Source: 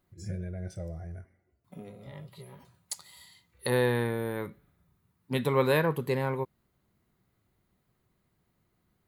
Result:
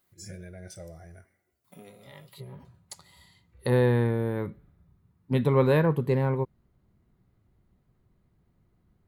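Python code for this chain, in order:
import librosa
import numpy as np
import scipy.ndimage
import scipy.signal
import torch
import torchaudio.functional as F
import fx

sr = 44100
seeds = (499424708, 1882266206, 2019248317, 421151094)

y = fx.tilt_eq(x, sr, slope=fx.steps((0.0, 2.5), (2.39, -2.5)))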